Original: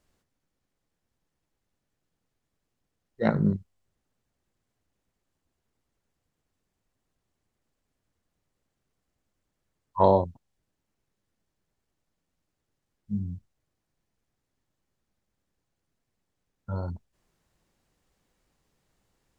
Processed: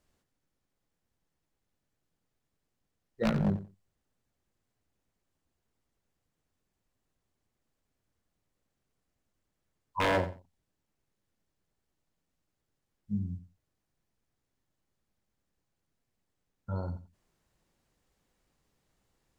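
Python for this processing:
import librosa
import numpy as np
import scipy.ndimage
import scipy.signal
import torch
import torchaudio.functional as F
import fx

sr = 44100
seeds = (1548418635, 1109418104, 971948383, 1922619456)

y = 10.0 ** (-18.5 / 20.0) * (np.abs((x / 10.0 ** (-18.5 / 20.0) + 3.0) % 4.0 - 2.0) - 1.0)
y = fx.echo_feedback(y, sr, ms=90, feedback_pct=16, wet_db=-14.0)
y = y * librosa.db_to_amplitude(-2.5)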